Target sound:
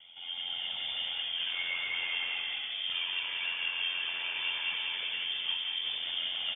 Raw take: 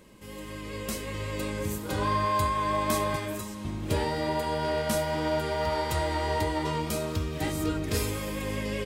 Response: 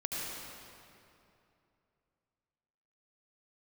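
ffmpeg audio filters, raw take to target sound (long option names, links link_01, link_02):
-filter_complex "[0:a]highpass=47,equalizer=frequency=310:width=0.53:gain=8,aecho=1:1:3.5:0.5,acompressor=threshold=-23dB:ratio=6,asoftclip=type=tanh:threshold=-28dB,flanger=delay=0.8:depth=2.8:regen=51:speed=0.89:shape=sinusoidal,aeval=exprs='val(0)*sin(2*PI*32*n/s)':channel_layout=same,asplit=8[link_01][link_02][link_03][link_04][link_05][link_06][link_07][link_08];[link_02]adelay=261,afreqshift=33,volume=-5.5dB[link_09];[link_03]adelay=522,afreqshift=66,volume=-10.9dB[link_10];[link_04]adelay=783,afreqshift=99,volume=-16.2dB[link_11];[link_05]adelay=1044,afreqshift=132,volume=-21.6dB[link_12];[link_06]adelay=1305,afreqshift=165,volume=-26.9dB[link_13];[link_07]adelay=1566,afreqshift=198,volume=-32.3dB[link_14];[link_08]adelay=1827,afreqshift=231,volume=-37.6dB[link_15];[link_01][link_09][link_10][link_11][link_12][link_13][link_14][link_15]amix=inputs=8:normalize=0,asplit=2[link_16][link_17];[1:a]atrim=start_sample=2205,asetrate=57330,aresample=44100[link_18];[link_17][link_18]afir=irnorm=-1:irlink=0,volume=-7.5dB[link_19];[link_16][link_19]amix=inputs=2:normalize=0,asetrate=59535,aresample=44100,lowpass=frequency=3100:width_type=q:width=0.5098,lowpass=frequency=3100:width_type=q:width=0.6013,lowpass=frequency=3100:width_type=q:width=0.9,lowpass=frequency=3100:width_type=q:width=2.563,afreqshift=-3600"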